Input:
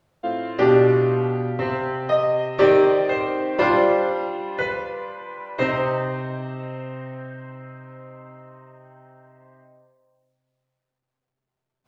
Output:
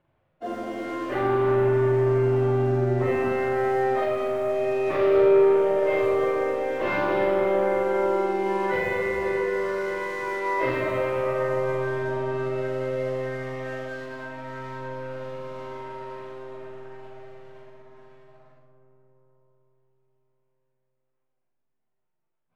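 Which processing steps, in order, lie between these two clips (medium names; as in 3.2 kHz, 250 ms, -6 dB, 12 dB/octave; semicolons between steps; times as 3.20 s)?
low-pass 2.9 kHz 24 dB/octave; in parallel at +2 dB: compression 4:1, threshold -31 dBFS, peak gain reduction 16.5 dB; on the sum: waveshaping leveller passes 2; peak limiter -12 dBFS, peak gain reduction 9.5 dB; plain phase-vocoder stretch 1.9×; flutter echo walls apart 7 m, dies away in 0.6 s; on a send at -12 dB: reverberation RT60 5.0 s, pre-delay 95 ms; on the sum: trim -6.5 dB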